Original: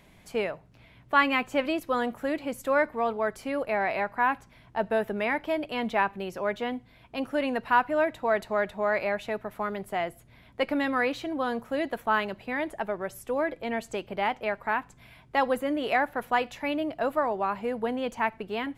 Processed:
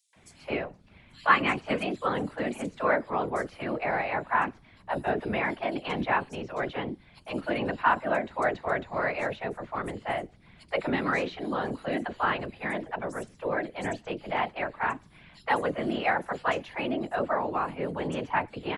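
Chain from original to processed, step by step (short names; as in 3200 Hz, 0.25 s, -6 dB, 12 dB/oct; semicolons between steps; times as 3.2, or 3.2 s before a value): downsampling 22050 Hz; whisperiser; three bands offset in time highs, mids, lows 0.13/0.16 s, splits 550/4900 Hz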